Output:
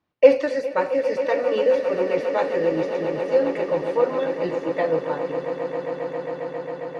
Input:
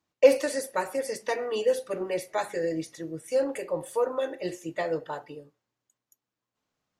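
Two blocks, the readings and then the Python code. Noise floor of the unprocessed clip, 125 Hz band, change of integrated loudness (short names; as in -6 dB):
under -85 dBFS, +7.5 dB, +6.0 dB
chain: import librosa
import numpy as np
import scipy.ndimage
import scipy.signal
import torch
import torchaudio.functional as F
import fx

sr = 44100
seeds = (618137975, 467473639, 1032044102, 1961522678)

y = fx.air_absorb(x, sr, metres=230.0)
y = fx.echo_swell(y, sr, ms=135, loudest=8, wet_db=-13.5)
y = y * librosa.db_to_amplitude(5.5)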